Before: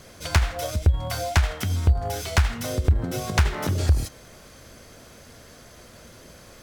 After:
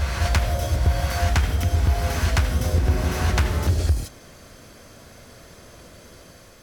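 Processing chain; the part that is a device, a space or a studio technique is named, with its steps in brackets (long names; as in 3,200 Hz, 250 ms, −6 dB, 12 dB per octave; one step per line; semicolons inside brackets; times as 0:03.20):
reverse reverb (reversed playback; convolution reverb RT60 3.2 s, pre-delay 69 ms, DRR −0.5 dB; reversed playback)
level −2 dB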